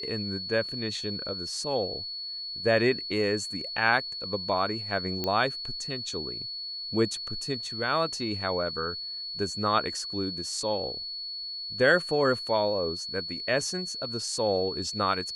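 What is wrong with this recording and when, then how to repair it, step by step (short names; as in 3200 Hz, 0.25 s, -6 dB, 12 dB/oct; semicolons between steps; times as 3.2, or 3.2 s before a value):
tone 4400 Hz -34 dBFS
5.24 pop -15 dBFS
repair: de-click; notch 4400 Hz, Q 30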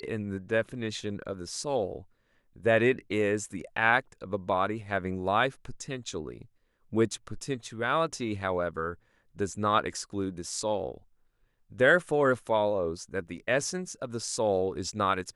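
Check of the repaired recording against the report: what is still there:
none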